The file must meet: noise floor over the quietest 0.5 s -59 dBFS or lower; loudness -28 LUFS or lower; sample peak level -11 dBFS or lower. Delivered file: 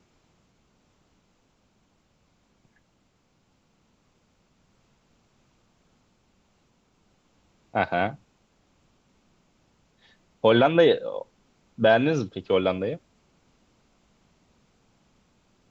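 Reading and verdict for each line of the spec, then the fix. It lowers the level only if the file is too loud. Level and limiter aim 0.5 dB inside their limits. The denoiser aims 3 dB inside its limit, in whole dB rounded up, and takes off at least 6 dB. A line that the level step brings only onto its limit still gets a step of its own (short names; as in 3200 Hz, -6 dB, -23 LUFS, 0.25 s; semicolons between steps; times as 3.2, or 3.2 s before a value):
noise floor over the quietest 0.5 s -67 dBFS: OK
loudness -23.5 LUFS: fail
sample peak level -7.5 dBFS: fail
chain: gain -5 dB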